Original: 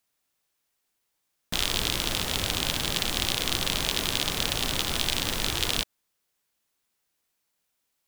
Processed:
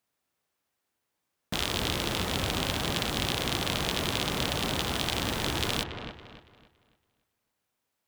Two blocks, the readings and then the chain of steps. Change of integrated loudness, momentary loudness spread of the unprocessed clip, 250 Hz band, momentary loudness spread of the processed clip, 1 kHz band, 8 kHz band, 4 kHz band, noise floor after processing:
−3.0 dB, 2 LU, +2.5 dB, 4 LU, +1.5 dB, −6.0 dB, −4.0 dB, −82 dBFS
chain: high-pass filter 57 Hz
high-shelf EQ 2,200 Hz −8.5 dB
on a send: delay with a low-pass on its return 281 ms, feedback 33%, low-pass 2,500 Hz, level −7 dB
on the sum: level +2 dB

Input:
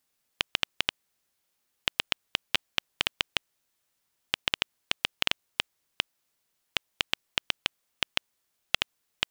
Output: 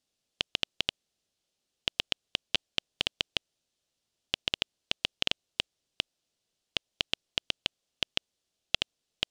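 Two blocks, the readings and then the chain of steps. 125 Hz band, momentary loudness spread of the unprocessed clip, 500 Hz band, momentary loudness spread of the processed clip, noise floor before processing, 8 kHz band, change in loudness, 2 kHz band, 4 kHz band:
0.0 dB, 6 LU, −0.5 dB, 6 LU, −78 dBFS, −3.0 dB, −2.0 dB, −5.0 dB, −1.0 dB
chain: low-pass filter 6,700 Hz 12 dB per octave
flat-topped bell 1,400 Hz −8.5 dB

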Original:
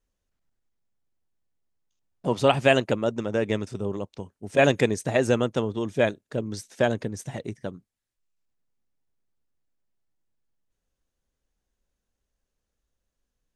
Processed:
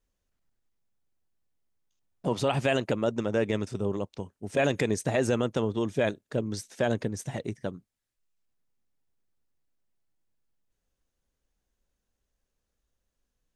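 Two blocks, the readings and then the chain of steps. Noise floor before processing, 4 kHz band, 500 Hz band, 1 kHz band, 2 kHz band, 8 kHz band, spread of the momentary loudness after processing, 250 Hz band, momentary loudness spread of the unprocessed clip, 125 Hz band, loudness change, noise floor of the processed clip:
−83 dBFS, −5.0 dB, −4.0 dB, −5.5 dB, −5.5 dB, −1.0 dB, 10 LU, −2.5 dB, 15 LU, −2.0 dB, −4.5 dB, −83 dBFS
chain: brickwall limiter −15 dBFS, peak gain reduction 9 dB

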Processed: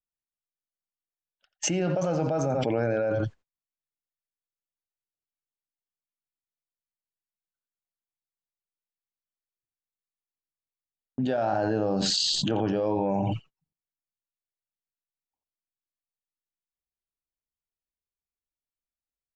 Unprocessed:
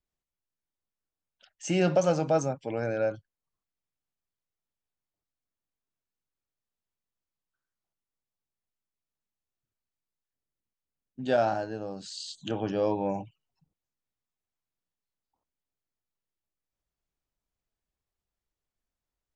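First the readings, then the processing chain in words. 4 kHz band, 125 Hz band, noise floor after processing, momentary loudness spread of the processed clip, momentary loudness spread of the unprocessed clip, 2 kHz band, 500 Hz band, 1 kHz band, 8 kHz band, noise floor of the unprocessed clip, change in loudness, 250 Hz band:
+12.0 dB, +4.5 dB, below −85 dBFS, 8 LU, 14 LU, +0.5 dB, +0.5 dB, +1.5 dB, +8.5 dB, below −85 dBFS, +2.5 dB, +4.0 dB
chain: Butterworth low-pass 7,800 Hz
high-shelf EQ 3,900 Hz −11.5 dB
noise gate −56 dBFS, range −46 dB
single-tap delay 86 ms −15 dB
envelope flattener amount 100%
level −7 dB

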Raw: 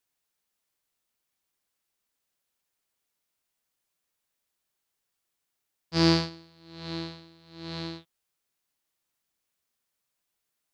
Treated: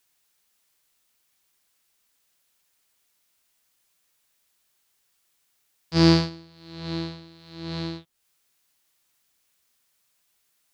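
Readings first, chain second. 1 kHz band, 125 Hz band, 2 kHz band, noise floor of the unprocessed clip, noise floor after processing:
+2.5 dB, +6.5 dB, +2.0 dB, −82 dBFS, −71 dBFS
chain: low-shelf EQ 340 Hz +5.5 dB
one half of a high-frequency compander encoder only
level +2 dB

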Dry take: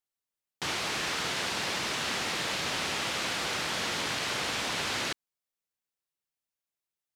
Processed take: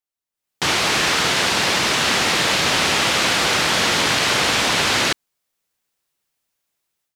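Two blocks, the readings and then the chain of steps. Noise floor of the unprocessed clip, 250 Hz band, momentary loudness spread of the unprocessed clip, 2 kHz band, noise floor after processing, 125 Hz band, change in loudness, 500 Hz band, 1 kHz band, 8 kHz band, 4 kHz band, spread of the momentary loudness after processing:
below −85 dBFS, +13.5 dB, 2 LU, +13.5 dB, below −85 dBFS, +13.5 dB, +13.5 dB, +13.5 dB, +13.5 dB, +13.5 dB, +13.5 dB, 2 LU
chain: automatic gain control gain up to 16 dB
level −1.5 dB

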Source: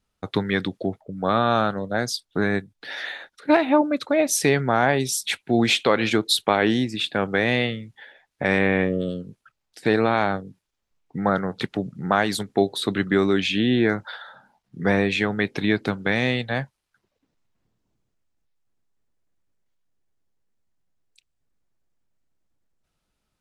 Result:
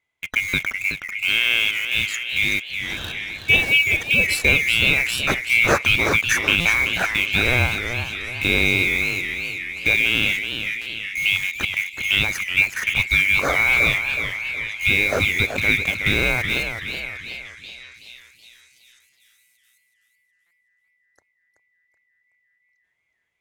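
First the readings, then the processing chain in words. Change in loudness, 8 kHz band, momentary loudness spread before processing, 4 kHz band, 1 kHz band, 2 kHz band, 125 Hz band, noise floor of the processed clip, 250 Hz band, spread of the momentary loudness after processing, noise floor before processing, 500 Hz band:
+4.0 dB, +0.5 dB, 11 LU, +6.5 dB, −5.5 dB, +10.0 dB, −0.5 dB, −70 dBFS, −9.0 dB, 11 LU, −79 dBFS, −7.0 dB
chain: neighbouring bands swapped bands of 2,000 Hz
high-shelf EQ 3,200 Hz −10 dB
in parallel at −6 dB: bit reduction 5 bits
on the sum: parametric band 89 Hz +7.5 dB 1.2 octaves
echo through a band-pass that steps 787 ms, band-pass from 2,500 Hz, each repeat 0.7 octaves, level −11 dB
buffer that repeats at 0:00.48/0:06.60/0:10.81/0:19.12/0:20.46, samples 256, times 8
feedback echo with a swinging delay time 375 ms, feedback 41%, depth 156 cents, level −8 dB
level +1 dB

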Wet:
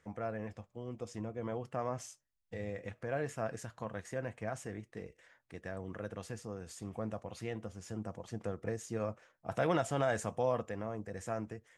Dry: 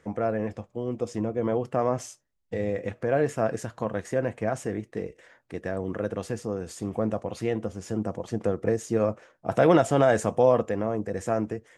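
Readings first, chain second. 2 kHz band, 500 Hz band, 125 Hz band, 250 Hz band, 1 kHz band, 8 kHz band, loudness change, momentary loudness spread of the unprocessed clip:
−8.5 dB, −13.0 dB, −9.5 dB, −13.0 dB, −10.5 dB, −7.5 dB, −12.0 dB, 12 LU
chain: parametric band 360 Hz −7 dB 2.1 octaves
level −7.5 dB

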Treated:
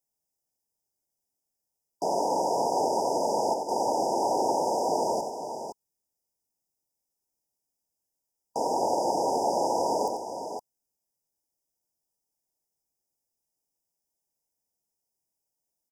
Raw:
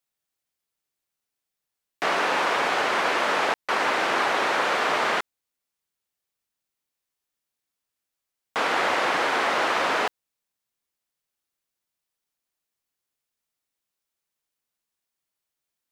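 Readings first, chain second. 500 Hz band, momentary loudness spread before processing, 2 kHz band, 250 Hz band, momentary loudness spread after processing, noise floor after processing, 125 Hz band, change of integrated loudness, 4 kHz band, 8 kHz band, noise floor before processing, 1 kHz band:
+1.5 dB, 5 LU, below −40 dB, +1.5 dB, 11 LU, −84 dBFS, +1.0 dB, −4.0 dB, −11.0 dB, +1.5 dB, −85 dBFS, −2.0 dB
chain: linear-phase brick-wall band-stop 980–4,800 Hz
multi-tap delay 91/514 ms −7/−8 dB

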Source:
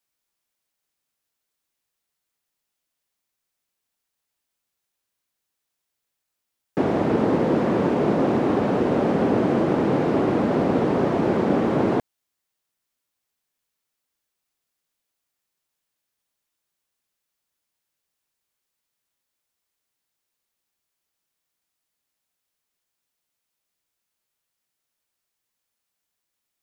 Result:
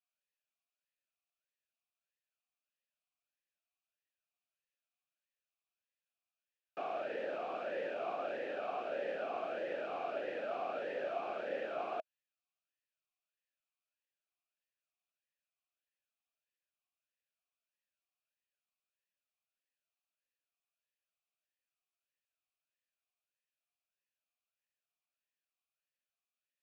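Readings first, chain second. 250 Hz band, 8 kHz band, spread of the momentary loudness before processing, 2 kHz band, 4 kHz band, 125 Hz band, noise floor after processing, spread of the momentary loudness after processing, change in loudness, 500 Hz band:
−31.5 dB, can't be measured, 2 LU, −11.0 dB, −13.0 dB, below −35 dB, below −85 dBFS, 1 LU, −18.5 dB, −16.0 dB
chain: tilt shelving filter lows −9.5 dB
formant filter swept between two vowels a-e 1.6 Hz
level −3.5 dB

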